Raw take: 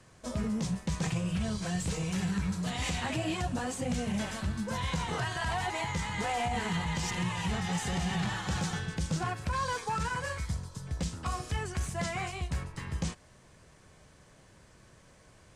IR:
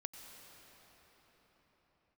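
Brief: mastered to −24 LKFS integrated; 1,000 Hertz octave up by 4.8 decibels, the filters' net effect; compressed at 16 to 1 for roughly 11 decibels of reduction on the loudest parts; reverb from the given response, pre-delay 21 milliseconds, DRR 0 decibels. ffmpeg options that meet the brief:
-filter_complex "[0:a]equalizer=frequency=1000:width_type=o:gain=6,acompressor=threshold=-36dB:ratio=16,asplit=2[link_01][link_02];[1:a]atrim=start_sample=2205,adelay=21[link_03];[link_02][link_03]afir=irnorm=-1:irlink=0,volume=3dB[link_04];[link_01][link_04]amix=inputs=2:normalize=0,volume=13.5dB"

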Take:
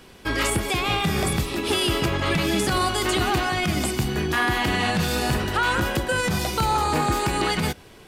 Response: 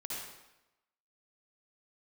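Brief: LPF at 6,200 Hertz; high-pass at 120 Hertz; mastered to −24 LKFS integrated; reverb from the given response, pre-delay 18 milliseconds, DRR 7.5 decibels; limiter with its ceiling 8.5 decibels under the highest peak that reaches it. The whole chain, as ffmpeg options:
-filter_complex "[0:a]highpass=120,lowpass=6200,alimiter=limit=-19dB:level=0:latency=1,asplit=2[link_01][link_02];[1:a]atrim=start_sample=2205,adelay=18[link_03];[link_02][link_03]afir=irnorm=-1:irlink=0,volume=-8.5dB[link_04];[link_01][link_04]amix=inputs=2:normalize=0,volume=3dB"

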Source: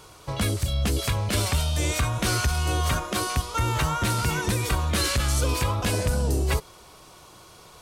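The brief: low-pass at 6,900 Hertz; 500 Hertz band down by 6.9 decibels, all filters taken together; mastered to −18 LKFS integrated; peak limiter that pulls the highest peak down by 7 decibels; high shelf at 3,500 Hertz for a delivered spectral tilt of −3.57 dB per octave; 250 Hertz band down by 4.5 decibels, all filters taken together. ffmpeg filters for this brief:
ffmpeg -i in.wav -af "lowpass=6900,equalizer=frequency=250:width_type=o:gain=-4.5,equalizer=frequency=500:width_type=o:gain=-7.5,highshelf=frequency=3500:gain=3,volume=10.5dB,alimiter=limit=-9dB:level=0:latency=1" out.wav

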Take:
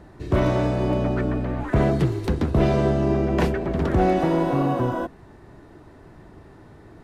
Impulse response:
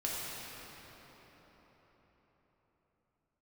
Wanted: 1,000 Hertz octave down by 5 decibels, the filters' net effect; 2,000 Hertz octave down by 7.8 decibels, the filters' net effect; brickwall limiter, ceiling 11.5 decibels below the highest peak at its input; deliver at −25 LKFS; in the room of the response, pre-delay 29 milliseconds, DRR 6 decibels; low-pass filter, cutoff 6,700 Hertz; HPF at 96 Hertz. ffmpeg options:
-filter_complex "[0:a]highpass=96,lowpass=6700,equalizer=frequency=1000:width_type=o:gain=-6,equalizer=frequency=2000:width_type=o:gain=-8,alimiter=limit=-21dB:level=0:latency=1,asplit=2[link_01][link_02];[1:a]atrim=start_sample=2205,adelay=29[link_03];[link_02][link_03]afir=irnorm=-1:irlink=0,volume=-11dB[link_04];[link_01][link_04]amix=inputs=2:normalize=0,volume=4dB"

